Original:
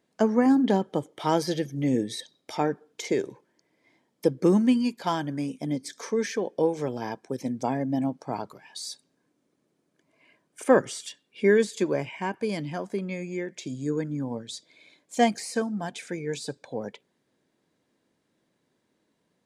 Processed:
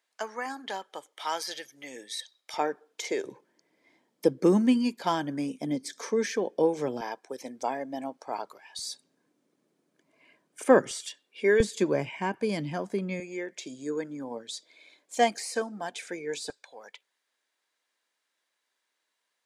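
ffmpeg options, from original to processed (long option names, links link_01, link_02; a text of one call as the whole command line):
ffmpeg -i in.wav -af "asetnsamples=nb_out_samples=441:pad=0,asendcmd='2.54 highpass f 480;3.25 highpass f 190;7.01 highpass f 510;8.79 highpass f 160;10.91 highpass f 380;11.6 highpass f 90;13.2 highpass f 380;16.5 highpass f 1200',highpass=1100" out.wav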